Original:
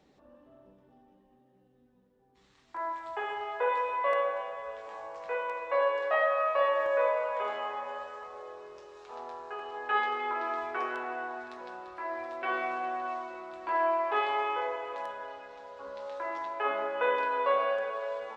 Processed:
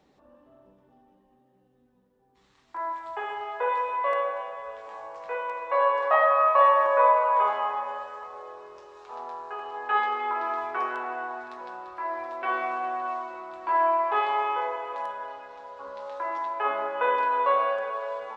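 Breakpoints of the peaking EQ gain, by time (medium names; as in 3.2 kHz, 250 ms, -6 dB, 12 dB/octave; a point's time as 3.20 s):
peaking EQ 1 kHz 0.91 oct
5.56 s +3.5 dB
6.09 s +14 dB
7.48 s +14 dB
8.02 s +6.5 dB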